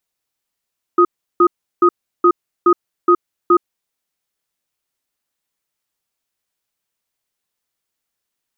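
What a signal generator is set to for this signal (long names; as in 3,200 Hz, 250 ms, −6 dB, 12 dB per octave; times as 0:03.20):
tone pair in a cadence 351 Hz, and 1,250 Hz, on 0.07 s, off 0.35 s, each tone −10 dBFS 2.73 s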